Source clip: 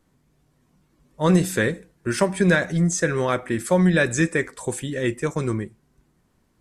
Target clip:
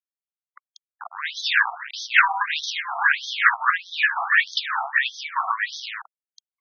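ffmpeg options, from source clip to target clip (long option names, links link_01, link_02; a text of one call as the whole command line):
ffmpeg -i in.wav -filter_complex "[0:a]asettb=1/sr,asplit=3[link_01][link_02][link_03];[link_01]atrim=end=2.634[link_04];[link_02]atrim=start=2.63:end=3.54,asetpts=PTS-STARTPTS,afade=type=in:duration=0.004:curve=qsin,afade=type=out:start_time=0.906:duration=0.004:curve=qsin,aeval=exprs='val(0)+0.5*0.0631*sgn(val(0))':channel_layout=same[link_05];[link_03]atrim=start=3.536[link_06];[link_04][link_05]acrossfade=duration=0.004:curve1=hsin:curve2=qsin[link_07];[link_07][link_06]acrossfade=duration=0.004:curve1=qsin:curve2=hsin,asplit=3[link_08][link_09][link_10];[link_08]afade=type=out:start_time=4.15:duration=0.02[link_11];[link_09]asplit=2[link_12][link_13];[link_13]highpass=frequency=720:poles=1,volume=26dB,asoftclip=type=tanh:threshold=-8dB[link_14];[link_12][link_14]amix=inputs=2:normalize=0,lowpass=frequency=1400:poles=1,volume=-6dB,afade=type=in:start_time=4.15:duration=0.02,afade=type=out:start_time=4.89:duration=0.02[link_15];[link_10]afade=type=in:start_time=4.89:duration=0.02[link_16];[link_11][link_15][link_16]amix=inputs=3:normalize=0,asoftclip=type=hard:threshold=-15.5dB,aemphasis=mode=reproduction:type=75fm,acrossover=split=160|4800[link_17][link_18][link_19];[link_17]acompressor=threshold=-40dB:ratio=6[link_20];[link_18]flanger=delay=17.5:depth=3.8:speed=0.52[link_21];[link_20][link_21][link_19]amix=inputs=3:normalize=0,asettb=1/sr,asplit=3[link_22][link_23][link_24];[link_22]atrim=end=1.394[link_25];[link_23]atrim=start=1.39:end=2.08,asetpts=PTS-STARTPTS,afade=type=in:duration=0.004:curve=qsin,afade=type=out:start_time=0.686:duration=0.004:curve=qsin,equalizer=frequency=130:width_type=o:width=1.4:gain=-8.5[link_26];[link_24]atrim=start=2.076[link_27];[link_25][link_26]acrossfade=duration=0.004:curve1=hsin:curve2=qsin[link_28];[link_28][link_27]acrossfade=duration=0.004:curve1=qsin:curve2=hsin,asplit=2[link_29][link_30];[link_30]adelay=361.5,volume=-22dB,highshelf=frequency=4000:gain=-8.13[link_31];[link_29][link_31]amix=inputs=2:normalize=0,acrusher=bits=8:mix=0:aa=0.000001,acrossover=split=140[link_32][link_33];[link_33]acompressor=threshold=-33dB:ratio=10[link_34];[link_32][link_34]amix=inputs=2:normalize=0,alimiter=level_in=30dB:limit=-1dB:release=50:level=0:latency=1,afftfilt=real='re*between(b*sr/1024,940*pow(4600/940,0.5+0.5*sin(2*PI*1.6*pts/sr))/1.41,940*pow(4600/940,0.5+0.5*sin(2*PI*1.6*pts/sr))*1.41)':imag='im*between(b*sr/1024,940*pow(4600/940,0.5+0.5*sin(2*PI*1.6*pts/sr))/1.41,940*pow(4600/940,0.5+0.5*sin(2*PI*1.6*pts/sr))*1.41)':win_size=1024:overlap=0.75,volume=2dB" out.wav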